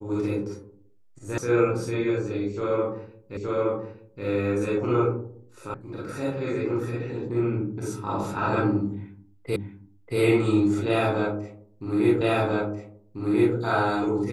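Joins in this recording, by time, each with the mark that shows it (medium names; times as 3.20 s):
1.38 s: sound stops dead
3.37 s: repeat of the last 0.87 s
5.74 s: sound stops dead
9.56 s: repeat of the last 0.63 s
12.21 s: repeat of the last 1.34 s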